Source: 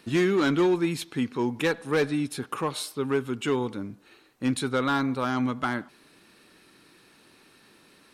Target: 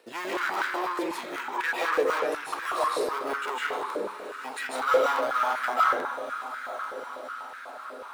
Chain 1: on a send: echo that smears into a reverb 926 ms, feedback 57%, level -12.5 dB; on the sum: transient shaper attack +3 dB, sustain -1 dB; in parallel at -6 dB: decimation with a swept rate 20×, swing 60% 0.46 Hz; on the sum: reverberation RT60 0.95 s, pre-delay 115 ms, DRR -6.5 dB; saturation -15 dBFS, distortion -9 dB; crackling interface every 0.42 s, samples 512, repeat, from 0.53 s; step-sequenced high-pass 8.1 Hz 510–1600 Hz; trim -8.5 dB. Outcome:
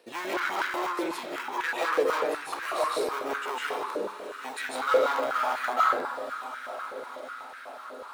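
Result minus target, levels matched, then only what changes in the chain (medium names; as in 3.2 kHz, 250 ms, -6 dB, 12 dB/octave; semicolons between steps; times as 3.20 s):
decimation with a swept rate: distortion +7 dB
change: decimation with a swept rate 8×, swing 60% 0.46 Hz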